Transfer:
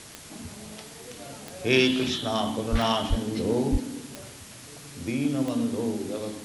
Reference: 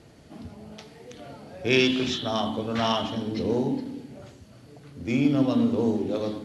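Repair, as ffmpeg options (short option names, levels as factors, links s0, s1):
-filter_complex "[0:a]adeclick=t=4,asplit=3[s0][s1][s2];[s0]afade=t=out:st=2.71:d=0.02[s3];[s1]highpass=f=140:w=0.5412,highpass=f=140:w=1.3066,afade=t=in:st=2.71:d=0.02,afade=t=out:st=2.83:d=0.02[s4];[s2]afade=t=in:st=2.83:d=0.02[s5];[s3][s4][s5]amix=inputs=3:normalize=0,asplit=3[s6][s7][s8];[s6]afade=t=out:st=3.09:d=0.02[s9];[s7]highpass=f=140:w=0.5412,highpass=f=140:w=1.3066,afade=t=in:st=3.09:d=0.02,afade=t=out:st=3.21:d=0.02[s10];[s8]afade=t=in:st=3.21:d=0.02[s11];[s9][s10][s11]amix=inputs=3:normalize=0,asplit=3[s12][s13][s14];[s12]afade=t=out:st=3.71:d=0.02[s15];[s13]highpass=f=140:w=0.5412,highpass=f=140:w=1.3066,afade=t=in:st=3.71:d=0.02,afade=t=out:st=3.83:d=0.02[s16];[s14]afade=t=in:st=3.83:d=0.02[s17];[s15][s16][s17]amix=inputs=3:normalize=0,afwtdn=0.0063,asetnsamples=n=441:p=0,asendcmd='5.1 volume volume 4.5dB',volume=1"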